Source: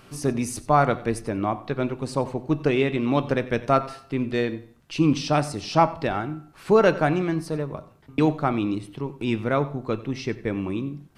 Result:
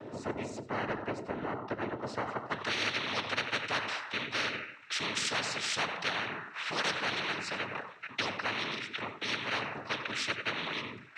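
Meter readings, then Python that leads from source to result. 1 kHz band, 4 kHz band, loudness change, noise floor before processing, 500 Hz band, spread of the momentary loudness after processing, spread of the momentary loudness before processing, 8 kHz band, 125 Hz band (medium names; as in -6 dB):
-11.0 dB, +4.0 dB, -9.5 dB, -52 dBFS, -15.5 dB, 7 LU, 10 LU, -3.0 dB, -18.5 dB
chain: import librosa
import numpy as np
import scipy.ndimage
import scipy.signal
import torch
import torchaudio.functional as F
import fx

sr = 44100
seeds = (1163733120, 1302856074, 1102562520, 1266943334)

y = fx.filter_sweep_bandpass(x, sr, from_hz=360.0, to_hz=1900.0, start_s=1.92, end_s=2.72, q=4.4)
y = fx.noise_vocoder(y, sr, seeds[0], bands=12)
y = fx.spectral_comp(y, sr, ratio=4.0)
y = F.gain(torch.from_numpy(y), -2.0).numpy()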